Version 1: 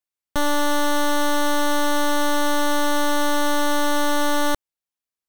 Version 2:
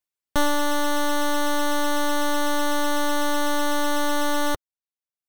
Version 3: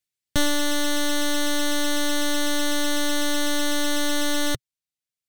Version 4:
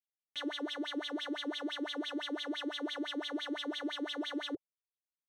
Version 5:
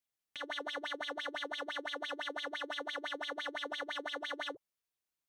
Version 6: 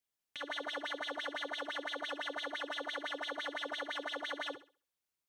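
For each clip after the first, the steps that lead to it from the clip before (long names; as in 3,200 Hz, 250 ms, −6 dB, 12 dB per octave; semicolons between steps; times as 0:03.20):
reverb reduction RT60 0.91 s; level +1 dB
octave-band graphic EQ 125/1,000/2,000/4,000/8,000 Hz +9/−11/+4/+4/+4 dB
automatic gain control gain up to 3 dB; LFO wah 5.9 Hz 280–3,600 Hz, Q 7.7; level −5 dB
compressor whose output falls as the input rises −42 dBFS, ratio −0.5; level +1 dB
feedback echo with a high-pass in the loop 66 ms, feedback 31%, high-pass 200 Hz, level −12 dB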